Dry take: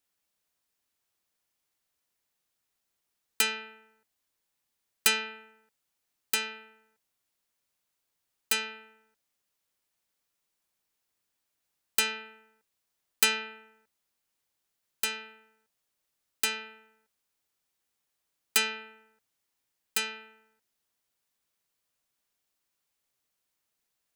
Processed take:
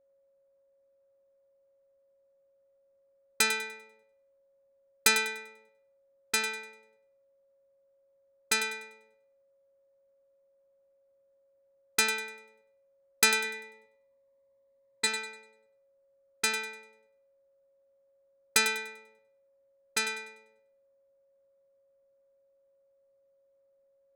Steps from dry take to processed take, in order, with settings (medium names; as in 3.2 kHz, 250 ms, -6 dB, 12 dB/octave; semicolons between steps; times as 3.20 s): level-controlled noise filter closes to 960 Hz, open at -27 dBFS; 13.44–15.07 s: rippled EQ curve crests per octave 1, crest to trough 13 dB; whistle 550 Hz -69 dBFS; Butterworth band-stop 2.9 kHz, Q 4.7; thinning echo 98 ms, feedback 31%, high-pass 420 Hz, level -10 dB; trim +2.5 dB